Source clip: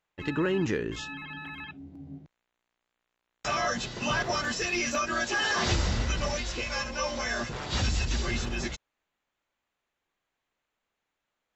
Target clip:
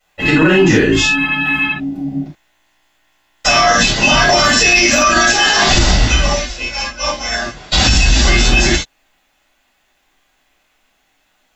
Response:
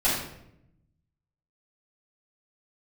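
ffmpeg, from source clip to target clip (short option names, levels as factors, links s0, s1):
-filter_complex "[0:a]asettb=1/sr,asplit=3[s0][s1][s2];[s0]atrim=end=5.314[s3];[s1]atrim=start=5.31:end=7.72,asetpts=PTS-STARTPTS,afade=t=in:d=0.004:c=qsin,afade=t=out:st=2.406:d=0.004:c=qsin,agate=range=0.0224:threshold=0.0794:ratio=3:detection=peak[s4];[s2]atrim=start=7.716[s5];[s3][s4]acrossfade=d=0.004:c1=hsin:c2=qsin[s6];[s6][s5]acrossfade=d=0.004:c1=qsin:c2=hsin,highshelf=f=2100:g=8[s7];[1:a]atrim=start_sample=2205,atrim=end_sample=3969[s8];[s7][s8]afir=irnorm=-1:irlink=0,alimiter=level_in=2.37:limit=0.891:release=50:level=0:latency=1,volume=0.891"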